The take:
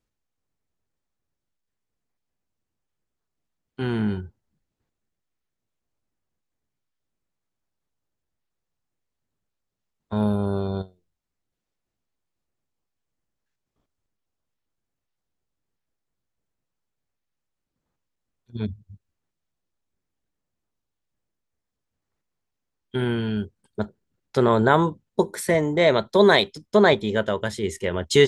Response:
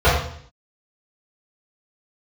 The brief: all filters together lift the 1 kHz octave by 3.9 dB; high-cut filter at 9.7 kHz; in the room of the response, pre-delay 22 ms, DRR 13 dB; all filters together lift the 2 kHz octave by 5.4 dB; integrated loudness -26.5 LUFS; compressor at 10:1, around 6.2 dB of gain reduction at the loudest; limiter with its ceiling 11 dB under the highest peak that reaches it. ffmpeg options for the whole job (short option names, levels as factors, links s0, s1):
-filter_complex "[0:a]lowpass=9700,equalizer=f=1000:t=o:g=3.5,equalizer=f=2000:t=o:g=5.5,acompressor=threshold=0.178:ratio=10,alimiter=limit=0.158:level=0:latency=1,asplit=2[s0][s1];[1:a]atrim=start_sample=2205,adelay=22[s2];[s1][s2]afir=irnorm=-1:irlink=0,volume=0.0126[s3];[s0][s3]amix=inputs=2:normalize=0,volume=1.26"